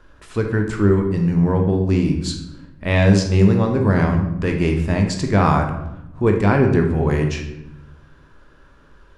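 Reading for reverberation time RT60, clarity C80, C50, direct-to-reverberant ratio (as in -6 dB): 0.90 s, 9.5 dB, 6.5 dB, 3.0 dB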